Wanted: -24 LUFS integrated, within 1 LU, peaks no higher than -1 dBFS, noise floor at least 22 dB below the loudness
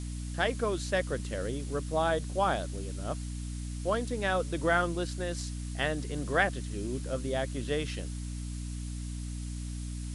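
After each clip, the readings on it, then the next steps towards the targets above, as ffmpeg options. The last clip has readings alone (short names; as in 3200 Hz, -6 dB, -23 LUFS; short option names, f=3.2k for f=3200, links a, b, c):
hum 60 Hz; harmonics up to 300 Hz; hum level -35 dBFS; noise floor -37 dBFS; noise floor target -55 dBFS; loudness -32.5 LUFS; peak -13.0 dBFS; loudness target -24.0 LUFS
-> -af "bandreject=f=60:t=h:w=6,bandreject=f=120:t=h:w=6,bandreject=f=180:t=h:w=6,bandreject=f=240:t=h:w=6,bandreject=f=300:t=h:w=6"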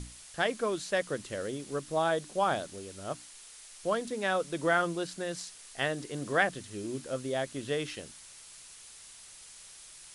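hum none; noise floor -51 dBFS; noise floor target -55 dBFS
-> -af "afftdn=nr=6:nf=-51"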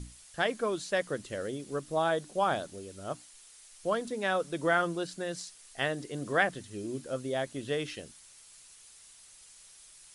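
noise floor -55 dBFS; loudness -32.5 LUFS; peak -13.5 dBFS; loudness target -24.0 LUFS
-> -af "volume=8.5dB"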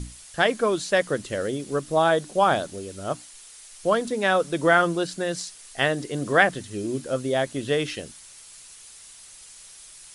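loudness -24.0 LUFS; peak -5.0 dBFS; noise floor -47 dBFS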